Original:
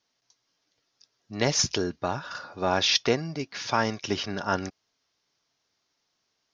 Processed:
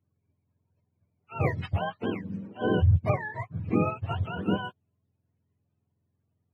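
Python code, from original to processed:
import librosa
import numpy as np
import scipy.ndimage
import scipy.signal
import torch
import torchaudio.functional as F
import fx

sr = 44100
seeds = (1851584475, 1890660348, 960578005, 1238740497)

y = fx.octave_mirror(x, sr, pivot_hz=530.0)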